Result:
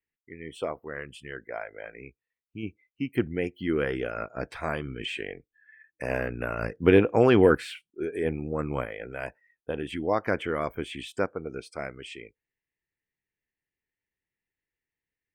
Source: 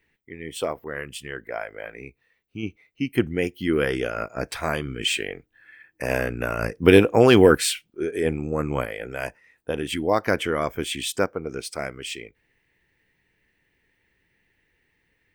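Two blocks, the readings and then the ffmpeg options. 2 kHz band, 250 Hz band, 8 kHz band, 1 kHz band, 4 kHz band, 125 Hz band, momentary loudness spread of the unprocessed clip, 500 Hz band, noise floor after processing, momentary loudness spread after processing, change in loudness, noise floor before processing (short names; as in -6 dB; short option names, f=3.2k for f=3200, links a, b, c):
-5.5 dB, -4.5 dB, under -15 dB, -4.5 dB, -11.5 dB, -4.5 dB, 19 LU, -4.5 dB, under -85 dBFS, 20 LU, -4.5 dB, -71 dBFS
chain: -filter_complex "[0:a]afftdn=nr=19:nf=-46,acrossover=split=2800[a][b];[b]acompressor=threshold=-44dB:ratio=4:attack=1:release=60[c];[a][c]amix=inputs=2:normalize=0,volume=-4.5dB"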